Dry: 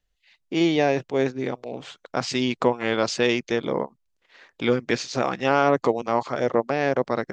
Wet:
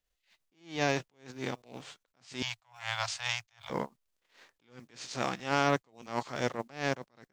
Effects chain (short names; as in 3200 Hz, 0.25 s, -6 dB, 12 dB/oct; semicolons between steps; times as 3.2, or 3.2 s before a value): spectral whitening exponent 0.6; 2.42–3.7 elliptic band-stop 110–700 Hz, stop band 40 dB; attack slew limiter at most 160 dB/s; gain -7.5 dB